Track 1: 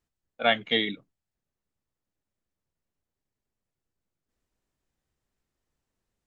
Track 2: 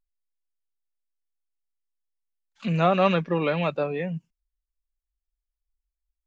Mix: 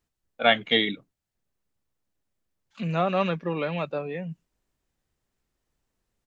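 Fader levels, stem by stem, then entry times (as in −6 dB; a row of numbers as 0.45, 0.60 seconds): +3.0, −4.0 decibels; 0.00, 0.15 seconds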